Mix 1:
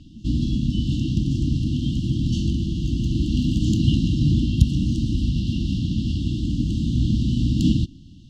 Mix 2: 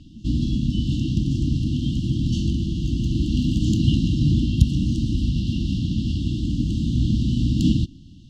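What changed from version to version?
none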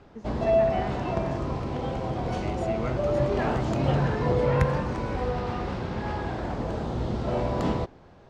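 second voice: unmuted; background -10.0 dB; master: remove brick-wall FIR band-stop 330–2700 Hz

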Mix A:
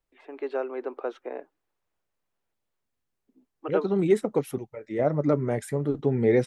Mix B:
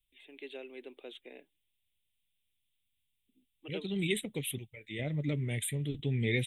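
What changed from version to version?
second voice: add bell 2400 Hz +7 dB 1.3 oct; master: add EQ curve 100 Hz 0 dB, 1300 Hz -27 dB, 2100 Hz -3 dB, 3600 Hz +11 dB, 5000 Hz -27 dB, 8600 Hz +7 dB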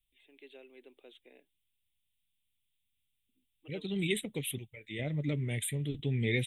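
first voice -8.5 dB

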